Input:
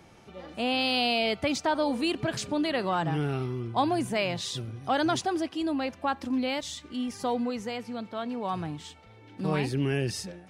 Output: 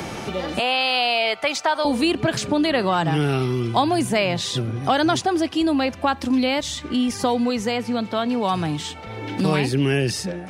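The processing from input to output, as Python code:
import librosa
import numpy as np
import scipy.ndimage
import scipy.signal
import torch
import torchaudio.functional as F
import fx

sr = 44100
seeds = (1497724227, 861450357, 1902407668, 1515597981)

y = fx.highpass(x, sr, hz=720.0, slope=12, at=(0.59, 1.85))
y = fx.band_squash(y, sr, depth_pct=70)
y = F.gain(torch.from_numpy(y), 8.0).numpy()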